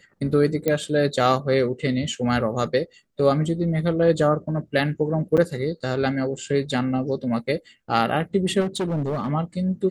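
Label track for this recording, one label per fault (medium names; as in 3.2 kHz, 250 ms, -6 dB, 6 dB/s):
0.680000	0.680000	pop -9 dBFS
5.370000	5.380000	dropout 6.6 ms
8.600000	9.300000	clipped -21 dBFS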